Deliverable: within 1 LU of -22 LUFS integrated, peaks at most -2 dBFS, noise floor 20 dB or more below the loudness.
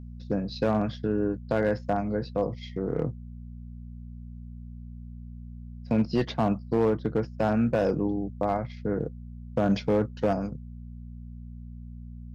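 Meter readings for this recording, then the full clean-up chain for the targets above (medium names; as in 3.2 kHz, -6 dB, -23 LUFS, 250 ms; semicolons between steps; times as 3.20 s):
clipped samples 0.6%; clipping level -16.5 dBFS; hum 60 Hz; highest harmonic 240 Hz; hum level -39 dBFS; loudness -28.0 LUFS; peak level -16.5 dBFS; loudness target -22.0 LUFS
-> clip repair -16.5 dBFS; de-hum 60 Hz, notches 4; trim +6 dB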